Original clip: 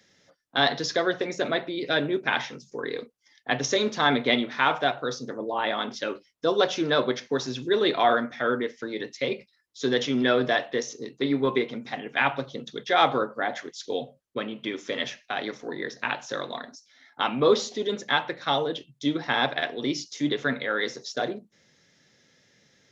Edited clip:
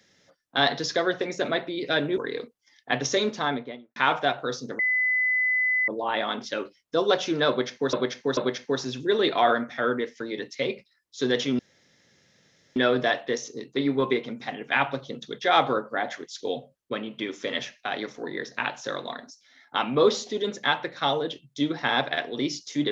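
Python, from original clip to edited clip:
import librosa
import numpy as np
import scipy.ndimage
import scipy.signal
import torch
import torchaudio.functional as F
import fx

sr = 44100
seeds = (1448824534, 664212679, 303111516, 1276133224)

y = fx.studio_fade_out(x, sr, start_s=3.75, length_s=0.8)
y = fx.edit(y, sr, fx.cut(start_s=2.18, length_s=0.59),
    fx.insert_tone(at_s=5.38, length_s=1.09, hz=2010.0, db=-20.5),
    fx.repeat(start_s=6.99, length_s=0.44, count=3),
    fx.insert_room_tone(at_s=10.21, length_s=1.17), tone=tone)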